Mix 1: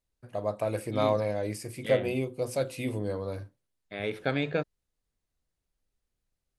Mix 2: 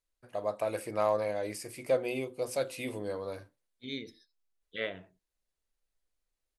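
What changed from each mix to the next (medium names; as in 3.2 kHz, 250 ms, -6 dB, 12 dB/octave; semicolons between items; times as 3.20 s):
second voice: entry +2.90 s; master: add peaking EQ 99 Hz -12 dB 2.8 oct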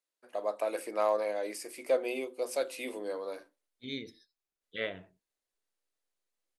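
first voice: add high-pass 270 Hz 24 dB/octave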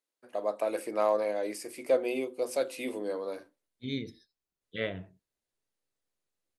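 master: add peaking EQ 99 Hz +12 dB 2.8 oct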